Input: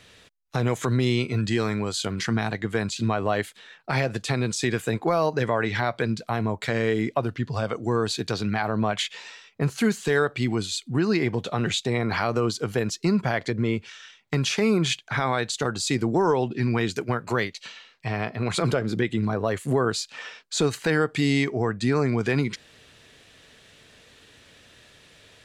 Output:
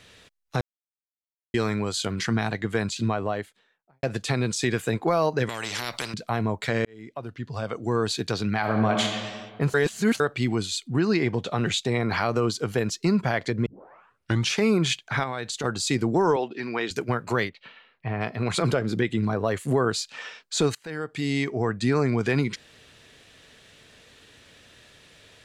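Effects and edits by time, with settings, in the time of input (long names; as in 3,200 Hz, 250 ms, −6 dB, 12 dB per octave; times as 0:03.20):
0:00.61–0:01.54: silence
0:02.87–0:04.03: fade out and dull
0:05.49–0:06.14: every bin compressed towards the loudest bin 4 to 1
0:06.85–0:08.05: fade in
0:08.58–0:09.08: thrown reverb, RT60 1.7 s, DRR 2 dB
0:09.74–0:10.20: reverse
0:10.87–0:11.51: low-pass filter 9,300 Hz
0:13.66: tape start 0.86 s
0:15.23–0:15.64: downward compressor 2.5 to 1, threshold −28 dBFS
0:16.36–0:16.91: band-pass filter 370–5,600 Hz
0:17.49–0:18.21: high-frequency loss of the air 440 metres
0:20.75–0:21.71: fade in, from −21.5 dB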